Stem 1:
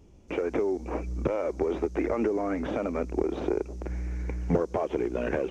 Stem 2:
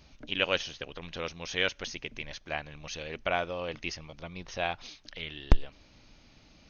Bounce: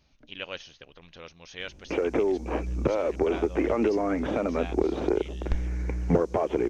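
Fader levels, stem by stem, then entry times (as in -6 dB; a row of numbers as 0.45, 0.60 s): +2.5, -9.0 dB; 1.60, 0.00 s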